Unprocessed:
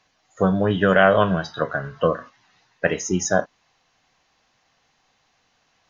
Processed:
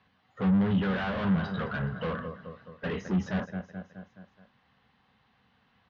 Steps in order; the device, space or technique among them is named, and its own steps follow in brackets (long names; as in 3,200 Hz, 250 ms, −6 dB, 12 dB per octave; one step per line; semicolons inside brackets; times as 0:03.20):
0:00.80–0:01.30: double-tracking delay 13 ms −8 dB
repeating echo 212 ms, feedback 54%, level −18.5 dB
guitar amplifier (tube saturation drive 29 dB, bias 0.25; bass and treble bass +14 dB, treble −2 dB; loudspeaker in its box 92–3,500 Hz, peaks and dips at 100 Hz −7 dB, 150 Hz −8 dB, 210 Hz +3 dB, 320 Hz −9 dB, 640 Hz −7 dB, 2,400 Hz −5 dB)